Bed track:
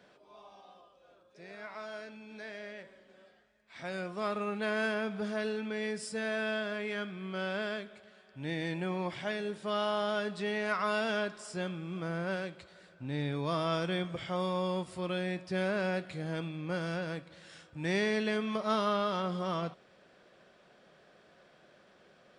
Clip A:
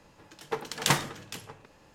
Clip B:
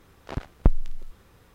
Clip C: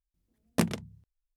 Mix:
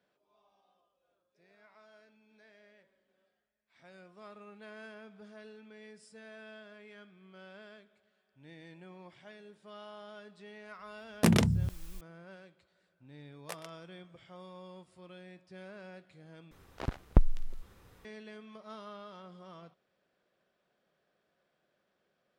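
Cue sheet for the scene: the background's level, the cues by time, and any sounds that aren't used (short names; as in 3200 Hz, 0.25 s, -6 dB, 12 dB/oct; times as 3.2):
bed track -17 dB
10.65 add C -0.5 dB + sustainer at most 25 dB/s
12.91 add C -11 dB + steep high-pass 490 Hz
16.51 replace with B -3.5 dB
not used: A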